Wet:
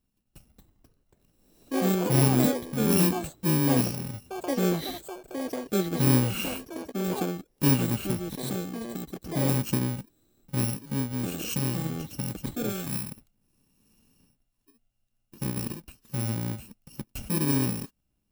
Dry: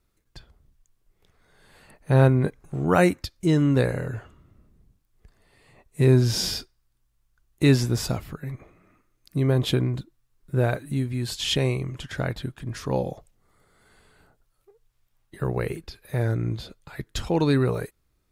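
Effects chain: bit-reversed sample order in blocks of 64 samples; small resonant body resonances 220/2800 Hz, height 13 dB, ringing for 30 ms; ever faster or slower copies 333 ms, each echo +6 st, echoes 3; 12.69–13.11 s: peaking EQ 380 Hz -10 dB 1.7 oct; trim -8.5 dB

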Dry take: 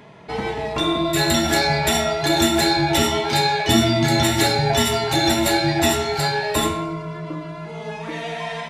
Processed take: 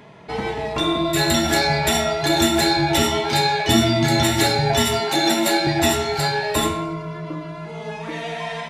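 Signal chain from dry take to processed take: 5.00–5.67 s: steep high-pass 160 Hz 48 dB/octave; 6.94–7.54 s: band-stop 7.9 kHz, Q 9.4

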